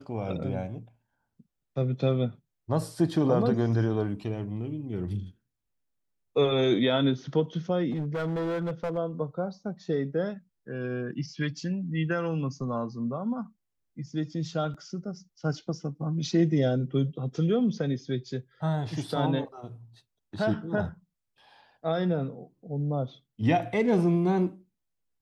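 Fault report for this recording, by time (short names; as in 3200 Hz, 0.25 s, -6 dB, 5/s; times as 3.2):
7.91–8.98 clipped -26.5 dBFS
14.74 gap 4.9 ms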